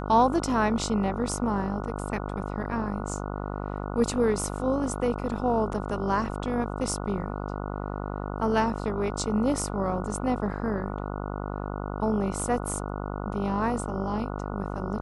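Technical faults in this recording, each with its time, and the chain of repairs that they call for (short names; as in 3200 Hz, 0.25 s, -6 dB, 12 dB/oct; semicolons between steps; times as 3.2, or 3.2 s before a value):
buzz 50 Hz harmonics 29 -33 dBFS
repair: de-hum 50 Hz, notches 29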